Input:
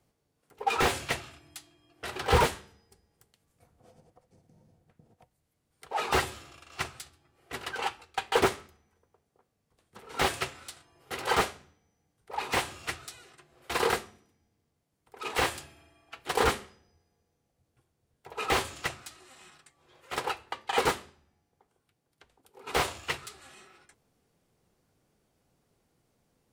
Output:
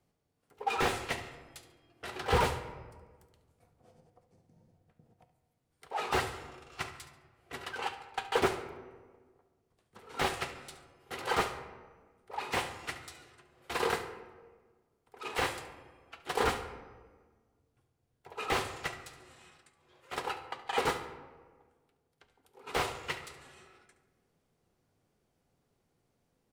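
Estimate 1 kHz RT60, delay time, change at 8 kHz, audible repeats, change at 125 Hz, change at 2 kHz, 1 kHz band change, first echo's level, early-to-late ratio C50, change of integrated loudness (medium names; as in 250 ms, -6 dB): 1.3 s, 71 ms, -6.5 dB, 1, -4.0 dB, -4.0 dB, -3.5 dB, -15.0 dB, 10.0 dB, -4.5 dB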